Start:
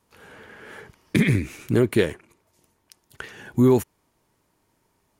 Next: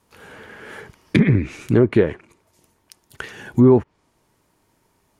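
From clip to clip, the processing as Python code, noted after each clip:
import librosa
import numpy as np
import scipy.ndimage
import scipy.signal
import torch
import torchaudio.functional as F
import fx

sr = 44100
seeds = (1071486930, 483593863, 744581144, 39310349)

y = fx.env_lowpass_down(x, sr, base_hz=1300.0, full_db=-14.5)
y = y * librosa.db_to_amplitude(4.5)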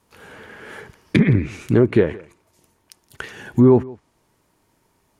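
y = x + 10.0 ** (-22.0 / 20.0) * np.pad(x, (int(167 * sr / 1000.0), 0))[:len(x)]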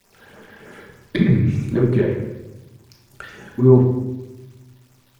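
y = fx.dmg_crackle(x, sr, seeds[0], per_s=390.0, level_db=-39.0)
y = fx.phaser_stages(y, sr, stages=12, low_hz=120.0, high_hz=4100.0, hz=3.3, feedback_pct=25)
y = fx.room_shoebox(y, sr, seeds[1], volume_m3=450.0, walls='mixed', distance_m=1.2)
y = y * librosa.db_to_amplitude(-3.5)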